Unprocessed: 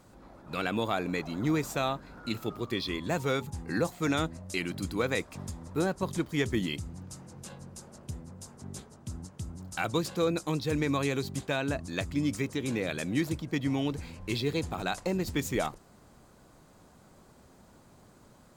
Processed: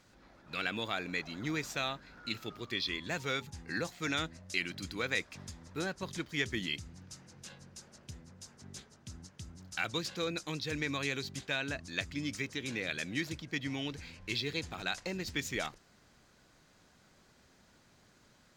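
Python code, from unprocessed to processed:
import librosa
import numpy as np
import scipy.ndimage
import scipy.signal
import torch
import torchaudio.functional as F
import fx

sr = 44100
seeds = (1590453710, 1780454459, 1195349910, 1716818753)

y = fx.band_shelf(x, sr, hz=3100.0, db=10.0, octaves=2.4)
y = y * 10.0 ** (-9.0 / 20.0)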